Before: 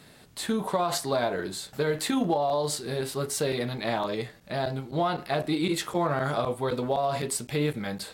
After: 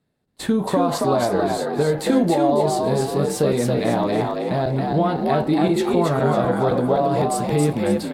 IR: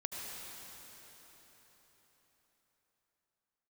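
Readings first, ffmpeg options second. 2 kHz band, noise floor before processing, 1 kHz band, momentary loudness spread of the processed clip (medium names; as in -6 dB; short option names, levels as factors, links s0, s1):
+3.0 dB, -53 dBFS, +7.5 dB, 4 LU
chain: -filter_complex "[0:a]tiltshelf=f=970:g=6,agate=range=0.0316:threshold=0.01:ratio=16:detection=peak,asplit=2[s0][s1];[s1]acompressor=threshold=0.0355:ratio=6,volume=1.26[s2];[s0][s2]amix=inputs=2:normalize=0,asplit=6[s3][s4][s5][s6][s7][s8];[s4]adelay=275,afreqshift=57,volume=0.708[s9];[s5]adelay=550,afreqshift=114,volume=0.269[s10];[s6]adelay=825,afreqshift=171,volume=0.102[s11];[s7]adelay=1100,afreqshift=228,volume=0.0389[s12];[s8]adelay=1375,afreqshift=285,volume=0.0148[s13];[s3][s9][s10][s11][s12][s13]amix=inputs=6:normalize=0"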